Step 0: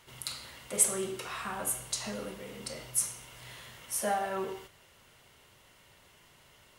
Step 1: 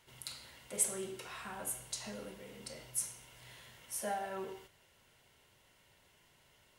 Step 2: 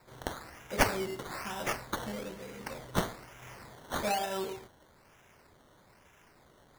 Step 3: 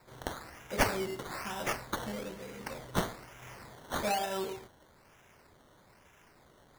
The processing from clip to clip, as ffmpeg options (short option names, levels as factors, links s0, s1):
-af "bandreject=f=1200:w=8.5,volume=0.447"
-af "acrusher=samples=14:mix=1:aa=0.000001:lfo=1:lforange=8.4:lforate=1.1,volume=2.11"
-af "asoftclip=type=tanh:threshold=0.178"